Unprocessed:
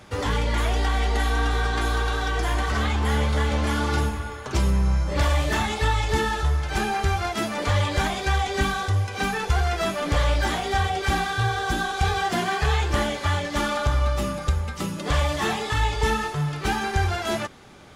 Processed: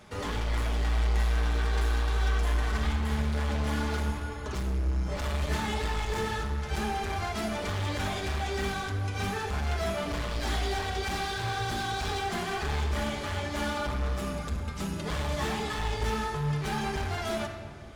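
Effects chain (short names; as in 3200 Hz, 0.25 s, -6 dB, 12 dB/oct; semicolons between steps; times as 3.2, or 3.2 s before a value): 10.31–12.19 bell 4400 Hz +6 dB 0.68 oct; hard clip -24.5 dBFS, distortion -8 dB; shoebox room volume 2700 m³, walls mixed, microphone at 1.4 m; gain -6 dB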